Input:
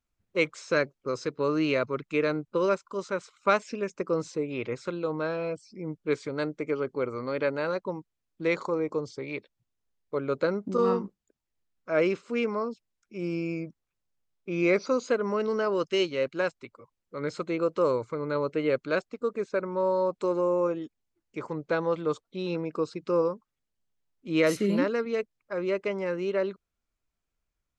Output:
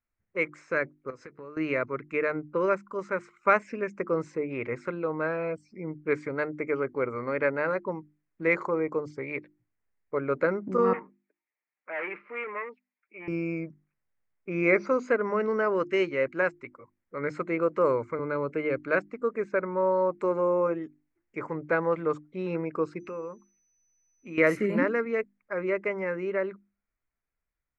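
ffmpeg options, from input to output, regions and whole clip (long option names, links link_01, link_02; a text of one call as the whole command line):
ffmpeg -i in.wav -filter_complex "[0:a]asettb=1/sr,asplit=3[link_01][link_02][link_03];[link_01]atrim=end=1.104[link_04];[link_02]atrim=start=1.1:end=1.57,asetpts=PTS-STARTPTS,afade=type=in:duration=0.004:curve=qsin,afade=type=out:start_time=0.466:duration=0.004:curve=qsin,acompressor=threshold=-37dB:ratio=12:attack=3.2:release=140:knee=1:detection=peak,asplit=2[link_05][link_06];[link_06]adelay=14,volume=-14dB[link_07];[link_05][link_07]amix=inputs=2:normalize=0,atrim=end_sample=20727[link_08];[link_03]atrim=start=1.566[link_09];[link_04][link_08]acrossfade=duration=0.004:curve1=hsin:curve2=qsin[link_10];[link_10][link_09]acrossfade=duration=0.004:curve1=qsin:curve2=hsin,asettb=1/sr,asplit=3[link_11][link_12][link_13];[link_11]atrim=end=10.934[link_14];[link_12]atrim=start=10.93:end=13.28,asetpts=PTS-STARTPTS,afade=type=in:duration=0.004:curve=qsin,afade=type=out:start_time=2.346:duration=0.004:curve=qsin,aecho=1:1:6.6:0.55,atrim=end_sample=103635,asoftclip=type=hard:threshold=-27dB,highpass=frequency=310:width=0.5412,highpass=frequency=310:width=1.3066,equalizer=frequency=310:width_type=q:width=4:gain=-10,equalizer=frequency=460:width_type=q:width=4:gain=-8,equalizer=frequency=670:width_type=q:width=4:gain=-7,equalizer=frequency=1100:width_type=q:width=4:gain=-3,equalizer=frequency=1500:width_type=q:width=4:gain=-6,equalizer=frequency=2400:width_type=q:width=4:gain=4,lowpass=frequency=2700:width=0.5412,lowpass=frequency=2700:width=1.3066[link_15];[link_13]atrim=start=13.276[link_16];[link_14][link_15]acrossfade=duration=0.004:curve1=hsin:curve2=qsin[link_17];[link_17][link_16]acrossfade=duration=0.004:curve1=qsin:curve2=hsin,asettb=1/sr,asplit=3[link_18][link_19][link_20];[link_18]atrim=end=18.194[link_21];[link_19]atrim=start=18.19:end=18.78,asetpts=PTS-STARTPTS,afade=type=in:duration=0.004:curve=qsin,afade=type=out:start_time=0.586:duration=0.004:curve=qsin,bandreject=frequency=1900:width=11,acrossover=split=330|3000[link_22][link_23][link_24];[link_23]acompressor=threshold=-28dB:ratio=6:attack=3.2:release=140:knee=2.83:detection=peak[link_25];[link_22][link_25][link_24]amix=inputs=3:normalize=0[link_26];[link_20]atrim=start=18.776[link_27];[link_21][link_26]acrossfade=duration=0.004:curve1=hsin:curve2=qsin[link_28];[link_28][link_27]acrossfade=duration=0.004:curve1=qsin:curve2=hsin,asettb=1/sr,asplit=3[link_29][link_30][link_31];[link_29]atrim=end=23.004[link_32];[link_30]atrim=start=23:end=24.38,asetpts=PTS-STARTPTS,afade=type=in:duration=0.004:curve=qsin,afade=type=out:start_time=1.376:duration=0.004:curve=qsin,equalizer=frequency=2600:width=6.4:gain=13,acompressor=threshold=-40dB:ratio=2.5:attack=3.2:release=140:knee=1:detection=peak,aeval=exprs='val(0)+0.00126*sin(2*PI*6000*n/s)':channel_layout=same[link_33];[link_31]atrim=start=24.376[link_34];[link_32][link_33]acrossfade=duration=0.004:curve1=hsin:curve2=qsin[link_35];[link_35][link_34]acrossfade=duration=0.004:curve1=qsin:curve2=hsin,highshelf=frequency=2700:width_type=q:width=3:gain=-9.5,bandreject=frequency=50:width_type=h:width=6,bandreject=frequency=100:width_type=h:width=6,bandreject=frequency=150:width_type=h:width=6,bandreject=frequency=200:width_type=h:width=6,bandreject=frequency=250:width_type=h:width=6,bandreject=frequency=300:width_type=h:width=6,bandreject=frequency=350:width_type=h:width=6,dynaudnorm=framelen=460:gausssize=9:maxgain=5dB,volume=-4.5dB" out.wav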